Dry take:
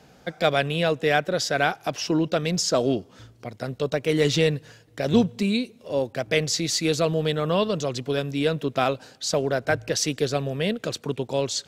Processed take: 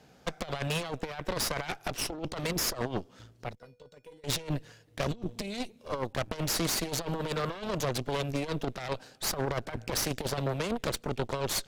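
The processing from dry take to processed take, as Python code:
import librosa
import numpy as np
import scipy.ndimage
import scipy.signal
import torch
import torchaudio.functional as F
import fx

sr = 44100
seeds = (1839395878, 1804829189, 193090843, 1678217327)

y = fx.over_compress(x, sr, threshold_db=-25.0, ratio=-0.5)
y = fx.comb_fb(y, sr, f0_hz=490.0, decay_s=0.27, harmonics='odd', damping=0.0, mix_pct=90, at=(3.55, 4.24))
y = fx.cheby_harmonics(y, sr, harmonics=(8,), levels_db=(-11,), full_scale_db=-10.0)
y = y * 10.0 ** (-8.5 / 20.0)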